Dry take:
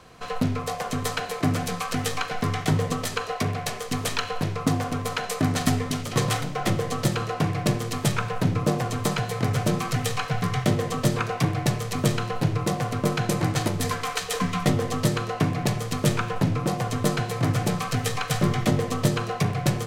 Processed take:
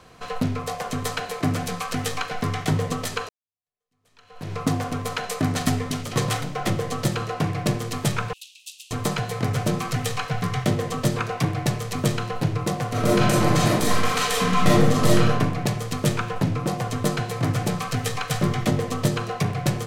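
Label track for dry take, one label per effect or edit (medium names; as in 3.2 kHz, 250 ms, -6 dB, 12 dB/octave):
3.290000	4.540000	fade in exponential
8.330000	8.910000	rippled Chebyshev high-pass 2.6 kHz, ripple 3 dB
12.890000	15.290000	reverb throw, RT60 0.99 s, DRR -5 dB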